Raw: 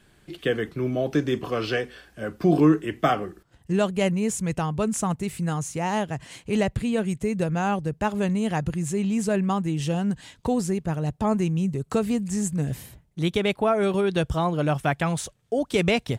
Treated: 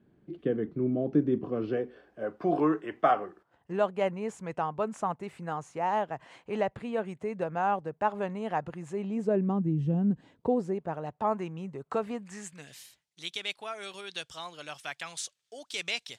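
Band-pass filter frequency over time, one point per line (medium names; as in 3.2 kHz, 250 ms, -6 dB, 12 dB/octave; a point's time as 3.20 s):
band-pass filter, Q 1.1
1.66 s 250 Hz
2.48 s 850 Hz
8.89 s 850 Hz
9.82 s 180 Hz
11.07 s 940 Hz
12.13 s 940 Hz
12.80 s 4.9 kHz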